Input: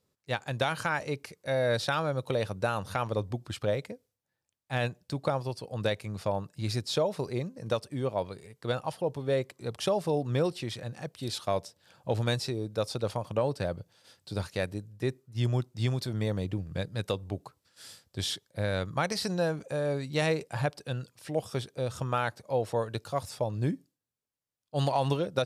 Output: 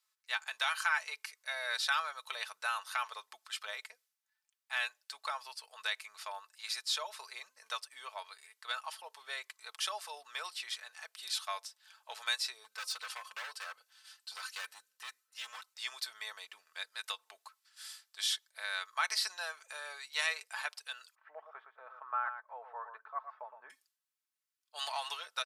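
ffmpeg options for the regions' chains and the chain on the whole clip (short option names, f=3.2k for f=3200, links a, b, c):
-filter_complex "[0:a]asettb=1/sr,asplit=3[a][b][c];[a]atrim=end=12.644[d];[b]atrim=start=12.64:end=15.74,asetpts=PTS-STARTPTS,afade=t=in:d=0.004:c=qsin,afade=t=out:st=3.096:d=0.004:c=qsin,aecho=1:1:3.9:0.68,atrim=end_sample=136710,asoftclip=type=hard:threshold=-31.5dB[e];[c]atrim=start=15.736[f];[d][e]acrossfade=d=0.004:c1=hsin:c2=qsin[g];[g][f]acrossfade=d=0.004:c1=qsin:c2=hsin,asettb=1/sr,asplit=3[h][i][j];[h]atrim=end=21.154[k];[i]atrim=start=21.15:end=23.7,asetpts=PTS-STARTPTS,afade=t=in:d=0.004:c=qsin,afade=t=out:st=2.546:d=0.004:c=qsin,lowpass=f=1.4k:w=0.5412,lowpass=f=1.4k:w=1.3066,aecho=1:1:114:0.355,atrim=end_sample=112455[l];[j]atrim=start=23.696[m];[k][l]acrossfade=d=0.004:c1=hsin:c2=qsin[n];[n][m]acrossfade=d=0.004:c1=qsin:c2=hsin,highpass=f=1.1k:w=0.5412,highpass=f=1.1k:w=1.3066,aecho=1:1:4.6:0.5"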